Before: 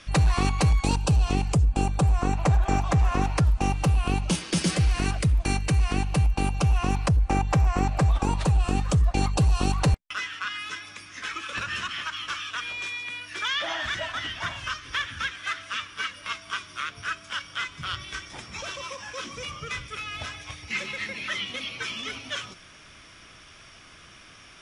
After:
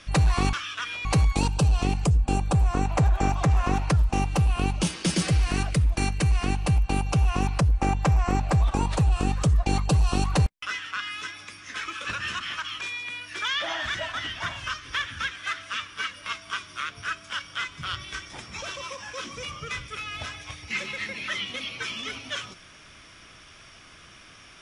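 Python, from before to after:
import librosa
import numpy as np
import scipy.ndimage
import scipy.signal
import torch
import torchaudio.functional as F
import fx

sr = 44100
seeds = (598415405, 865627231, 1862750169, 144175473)

y = fx.edit(x, sr, fx.move(start_s=12.29, length_s=0.52, to_s=0.53), tone=tone)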